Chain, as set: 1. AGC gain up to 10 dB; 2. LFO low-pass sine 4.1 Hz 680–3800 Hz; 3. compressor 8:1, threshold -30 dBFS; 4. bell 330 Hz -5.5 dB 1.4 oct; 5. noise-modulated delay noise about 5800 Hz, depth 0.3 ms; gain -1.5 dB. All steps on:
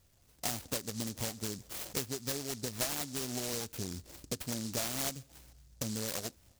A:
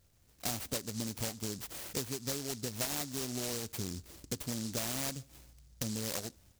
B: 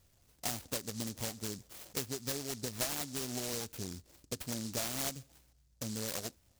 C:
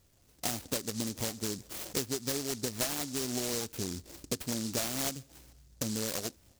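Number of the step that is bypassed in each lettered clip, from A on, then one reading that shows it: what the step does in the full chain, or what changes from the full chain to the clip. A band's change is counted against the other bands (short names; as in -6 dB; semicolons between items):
2, 125 Hz band +1.5 dB; 1, momentary loudness spread change +2 LU; 4, loudness change +2.5 LU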